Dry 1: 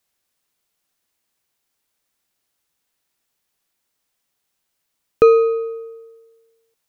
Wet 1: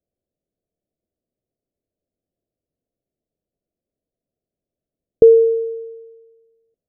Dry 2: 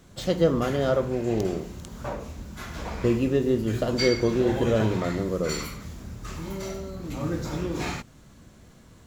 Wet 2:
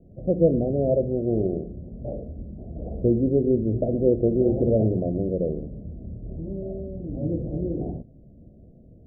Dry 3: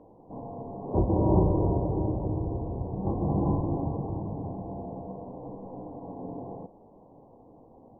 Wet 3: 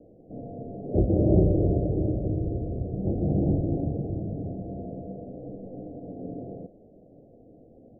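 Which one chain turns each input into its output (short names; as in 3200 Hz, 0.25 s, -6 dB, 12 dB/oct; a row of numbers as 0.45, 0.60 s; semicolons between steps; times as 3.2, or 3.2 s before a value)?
Wiener smoothing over 25 samples; steep low-pass 690 Hz 72 dB/oct; gain +2.5 dB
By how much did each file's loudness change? +2.0, +2.0, +2.5 LU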